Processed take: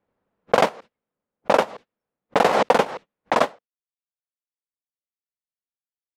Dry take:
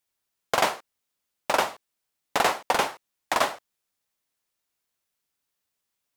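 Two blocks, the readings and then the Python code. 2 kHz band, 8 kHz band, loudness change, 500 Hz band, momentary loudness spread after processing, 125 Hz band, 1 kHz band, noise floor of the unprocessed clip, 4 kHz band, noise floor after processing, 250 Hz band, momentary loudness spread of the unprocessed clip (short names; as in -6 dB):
+1.5 dB, -5.0 dB, +5.0 dB, +9.0 dB, 11 LU, +9.0 dB, +4.0 dB, -82 dBFS, -1.0 dB, under -85 dBFS, +9.5 dB, 10 LU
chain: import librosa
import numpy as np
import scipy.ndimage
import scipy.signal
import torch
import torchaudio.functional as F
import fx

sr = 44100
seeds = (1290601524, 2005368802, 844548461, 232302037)

y = fx.noise_reduce_blind(x, sr, reduce_db=27)
y = fx.transient(y, sr, attack_db=4, sustain_db=-11)
y = fx.lowpass(y, sr, hz=3800.0, slope=6)
y = fx.small_body(y, sr, hz=(200.0, 470.0), ring_ms=20, db=10)
y = fx.env_lowpass(y, sr, base_hz=1300.0, full_db=-15.0)
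y = fx.pre_swell(y, sr, db_per_s=34.0)
y = F.gain(torch.from_numpy(y), -1.0).numpy()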